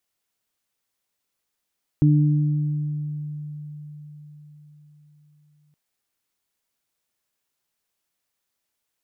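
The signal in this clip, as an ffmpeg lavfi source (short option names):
-f lavfi -i "aevalsrc='0.224*pow(10,-3*t/4.83)*sin(2*PI*149*t)+0.133*pow(10,-3*t/1.96)*sin(2*PI*298*t)':d=3.72:s=44100"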